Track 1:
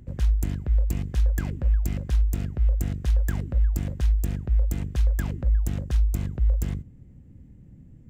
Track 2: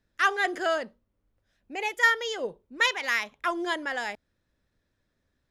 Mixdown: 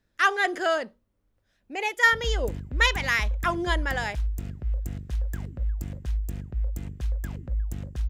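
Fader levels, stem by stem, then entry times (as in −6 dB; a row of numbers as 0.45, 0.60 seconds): −6.5, +2.0 decibels; 2.05, 0.00 seconds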